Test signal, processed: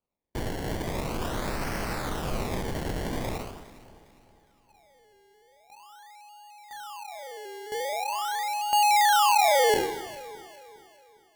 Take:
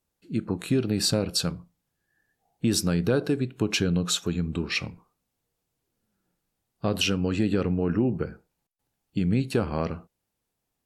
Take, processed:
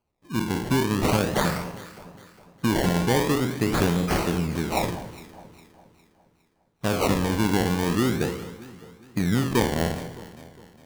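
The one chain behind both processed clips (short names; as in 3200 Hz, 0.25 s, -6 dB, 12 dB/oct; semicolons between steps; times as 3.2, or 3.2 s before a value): spectral trails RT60 0.76 s; decimation with a swept rate 24×, swing 100% 0.43 Hz; echo with dull and thin repeats by turns 0.204 s, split 1100 Hz, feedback 64%, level -13 dB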